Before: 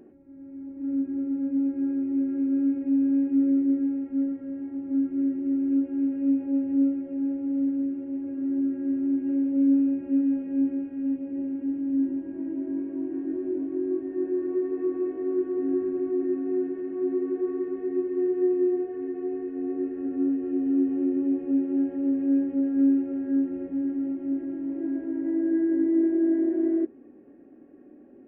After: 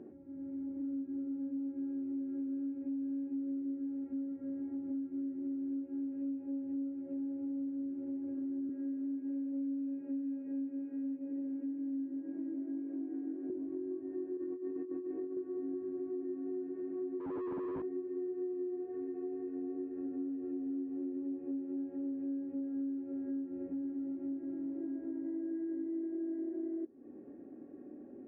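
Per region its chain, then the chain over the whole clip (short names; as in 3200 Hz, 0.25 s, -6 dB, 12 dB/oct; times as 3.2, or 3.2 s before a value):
8.69–13.5 HPF 230 Hz + comb 6.8 ms, depth 56%
14.37–15.37 Butterworth band-stop 680 Hz, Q 7 + negative-ratio compressor -30 dBFS, ratio -0.5 + doubler 22 ms -7 dB
17.2–17.82 infinite clipping + LPF 1100 Hz
whole clip: HPF 57 Hz; compressor, threshold -38 dBFS; LPF 1000 Hz 6 dB/oct; gain +1 dB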